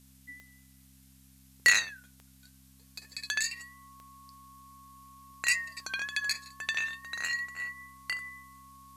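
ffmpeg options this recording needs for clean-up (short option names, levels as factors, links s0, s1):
-af "adeclick=t=4,bandreject=f=66:t=h:w=4,bandreject=f=132:t=h:w=4,bandreject=f=198:t=h:w=4,bandreject=f=264:t=h:w=4,bandreject=f=1100:w=30,afftdn=nr=21:nf=-59"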